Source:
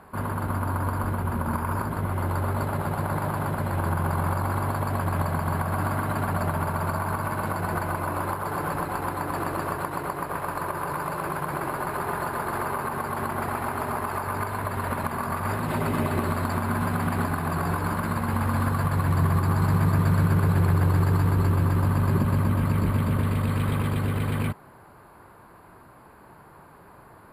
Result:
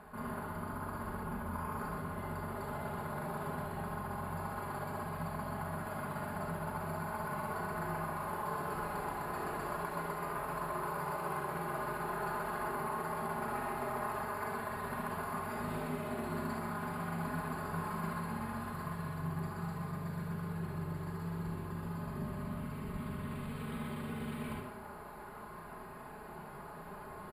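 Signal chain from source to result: reverse; compression 16:1, threshold -36 dBFS, peak gain reduction 19.5 dB; reverse; comb 4.8 ms, depth 61%; reverberation RT60 0.70 s, pre-delay 36 ms, DRR -1.5 dB; trim -3 dB

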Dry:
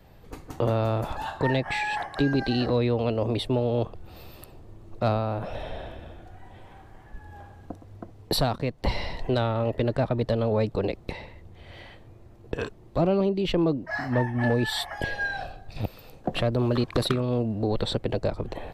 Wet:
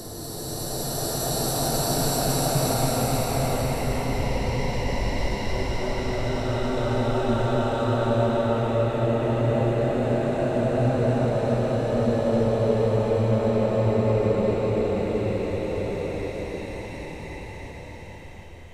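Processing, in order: Paulstretch 5.3×, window 1.00 s, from 7.97 s; resonant high shelf 5.3 kHz +6.5 dB, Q 3; reverse echo 279 ms -4 dB; trim +1.5 dB

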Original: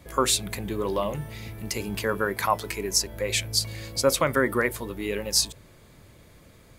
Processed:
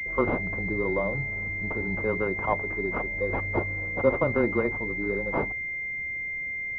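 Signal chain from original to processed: frequency shift -13 Hz; class-D stage that switches slowly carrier 2.1 kHz

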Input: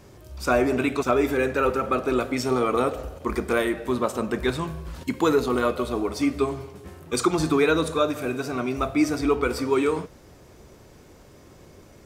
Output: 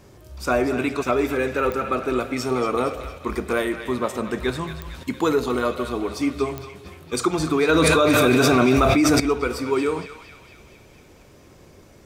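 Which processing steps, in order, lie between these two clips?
band-passed feedback delay 230 ms, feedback 67%, band-pass 2.9 kHz, level -8 dB; clicks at 1.72/4.82/6.58 s, -16 dBFS; 7.69–9.20 s: level flattener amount 100%

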